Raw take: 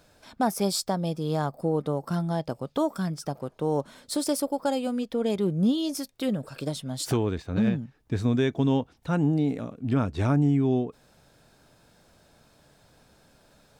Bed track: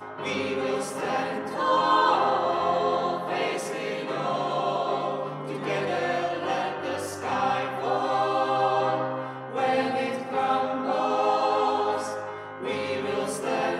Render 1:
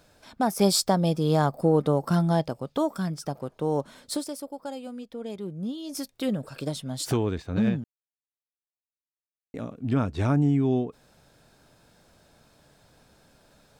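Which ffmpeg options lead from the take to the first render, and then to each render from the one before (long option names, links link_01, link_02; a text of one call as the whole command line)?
ffmpeg -i in.wav -filter_complex "[0:a]asettb=1/sr,asplit=3[link_01][link_02][link_03];[link_01]atrim=end=0.594[link_04];[link_02]atrim=start=0.59:end=2.48,asetpts=PTS-STARTPTS,afade=type=in:duration=0.004:curve=qsin,afade=type=out:start_time=1.886:duration=0.004:curve=qsin,acontrast=28[link_05];[link_03]atrim=start=2.476[link_06];[link_04][link_05]acrossfade=duration=0.004:curve1=hsin:curve2=qsin[link_07];[link_07][link_06]acrossfade=duration=0.004:curve1=qsin:curve2=hsin,asplit=5[link_08][link_09][link_10][link_11][link_12];[link_08]atrim=end=4.31,asetpts=PTS-STARTPTS,afade=type=out:start_time=4.15:duration=0.16:curve=qua:silence=0.334965[link_13];[link_09]atrim=start=4.31:end=5.82,asetpts=PTS-STARTPTS,volume=-9.5dB[link_14];[link_10]atrim=start=5.82:end=7.84,asetpts=PTS-STARTPTS,afade=type=in:duration=0.16:curve=qua:silence=0.334965,afade=type=out:start_time=2.016:duration=0.004:curve=hsin[link_15];[link_11]atrim=start=7.84:end=9.54,asetpts=PTS-STARTPTS,volume=0[link_16];[link_12]atrim=start=9.54,asetpts=PTS-STARTPTS,afade=type=in:duration=0.004:curve=hsin[link_17];[link_13][link_14][link_15][link_16][link_17]concat=n=5:v=0:a=1" out.wav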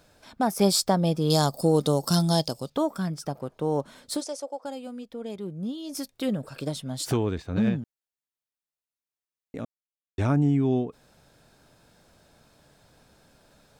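ffmpeg -i in.wav -filter_complex "[0:a]asettb=1/sr,asplit=3[link_01][link_02][link_03];[link_01]atrim=end=1.304[link_04];[link_02]atrim=start=1.3:end=2.7,asetpts=PTS-STARTPTS,afade=type=in:duration=0.004:curve=qsin,afade=type=out:start_time=1.396:duration=0.004:curve=qsin,highshelf=frequency=3100:width_type=q:width=1.5:gain=14[link_05];[link_03]atrim=start=2.696[link_06];[link_04][link_05]acrossfade=duration=0.004:curve1=hsin:curve2=qsin[link_07];[link_07][link_06]acrossfade=duration=0.004:curve1=qsin:curve2=hsin,asplit=3[link_08][link_09][link_10];[link_08]afade=type=out:start_time=4.2:duration=0.02[link_11];[link_09]highpass=frequency=310:width=0.5412,highpass=frequency=310:width=1.3066,equalizer=frequency=350:width_type=q:width=4:gain=-7,equalizer=frequency=510:width_type=q:width=4:gain=7,equalizer=frequency=750:width_type=q:width=4:gain=8,equalizer=frequency=6200:width_type=q:width=4:gain=10,lowpass=frequency=9500:width=0.5412,lowpass=frequency=9500:width=1.3066,afade=type=in:start_time=4.2:duration=0.02,afade=type=out:start_time=4.63:duration=0.02[link_12];[link_10]afade=type=in:start_time=4.63:duration=0.02[link_13];[link_11][link_12][link_13]amix=inputs=3:normalize=0,asplit=3[link_14][link_15][link_16];[link_14]atrim=end=9.65,asetpts=PTS-STARTPTS,afade=type=out:start_time=9.646:duration=0.004:curve=hsin[link_17];[link_15]atrim=start=9.65:end=10.18,asetpts=PTS-STARTPTS,volume=0[link_18];[link_16]atrim=start=10.18,asetpts=PTS-STARTPTS,afade=type=in:duration=0.004:curve=hsin[link_19];[link_17][link_18][link_19]concat=n=3:v=0:a=1" out.wav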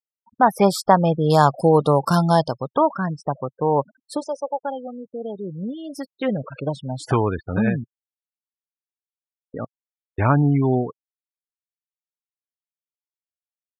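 ffmpeg -i in.wav -af "afftfilt=real='re*gte(hypot(re,im),0.0178)':imag='im*gte(hypot(re,im),0.0178)':win_size=1024:overlap=0.75,equalizer=frequency=125:width_type=o:width=1:gain=6,equalizer=frequency=500:width_type=o:width=1:gain=4,equalizer=frequency=1000:width_type=o:width=1:gain=12,equalizer=frequency=2000:width_type=o:width=1:gain=11,equalizer=frequency=4000:width_type=o:width=1:gain=-6,equalizer=frequency=8000:width_type=o:width=1:gain=-5" out.wav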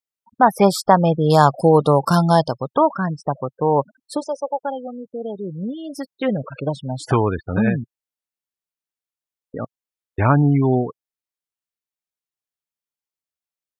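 ffmpeg -i in.wav -af "volume=2dB,alimiter=limit=-1dB:level=0:latency=1" out.wav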